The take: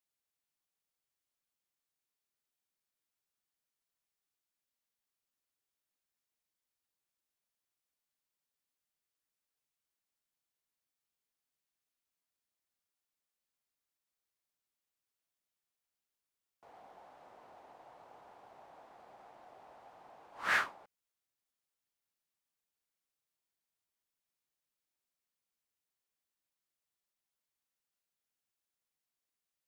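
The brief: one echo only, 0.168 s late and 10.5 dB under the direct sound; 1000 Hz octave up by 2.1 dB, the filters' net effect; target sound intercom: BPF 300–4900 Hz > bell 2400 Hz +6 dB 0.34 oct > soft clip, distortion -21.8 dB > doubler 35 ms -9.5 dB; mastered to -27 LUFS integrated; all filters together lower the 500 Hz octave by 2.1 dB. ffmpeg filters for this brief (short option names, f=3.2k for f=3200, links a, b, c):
-filter_complex "[0:a]highpass=300,lowpass=4.9k,equalizer=f=500:t=o:g=-4,equalizer=f=1k:t=o:g=3.5,equalizer=f=2.4k:t=o:w=0.34:g=6,aecho=1:1:168:0.299,asoftclip=threshold=-18dB,asplit=2[a][b];[b]adelay=35,volume=-9.5dB[c];[a][c]amix=inputs=2:normalize=0,volume=5dB"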